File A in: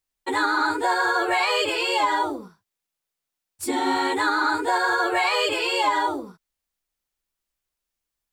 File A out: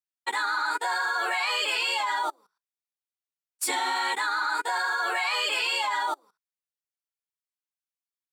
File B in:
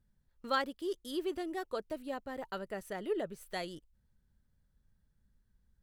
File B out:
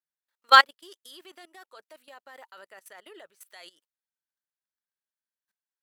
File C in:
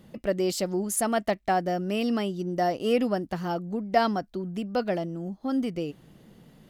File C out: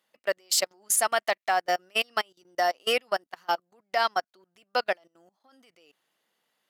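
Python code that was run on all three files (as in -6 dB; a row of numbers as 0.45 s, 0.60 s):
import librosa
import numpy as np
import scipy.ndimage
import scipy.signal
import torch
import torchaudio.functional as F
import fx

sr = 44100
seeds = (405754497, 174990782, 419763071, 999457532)

y = scipy.signal.sosfilt(scipy.signal.butter(2, 970.0, 'highpass', fs=sr, output='sos'), x)
y = fx.level_steps(y, sr, step_db=18)
y = fx.upward_expand(y, sr, threshold_db=-48.0, expansion=2.5)
y = y * 10.0 ** (-30 / 20.0) / np.sqrt(np.mean(np.square(y)))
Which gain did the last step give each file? +10.0 dB, +25.0 dB, +15.0 dB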